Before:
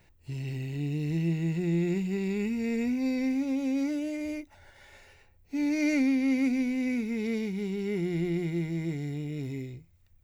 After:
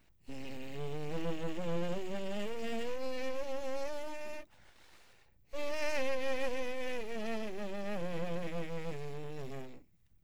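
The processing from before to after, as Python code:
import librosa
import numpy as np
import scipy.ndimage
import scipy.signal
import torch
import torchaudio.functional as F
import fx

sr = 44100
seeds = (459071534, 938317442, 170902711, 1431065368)

y = fx.spec_quant(x, sr, step_db=15)
y = np.abs(y)
y = y * librosa.db_to_amplitude(-4.0)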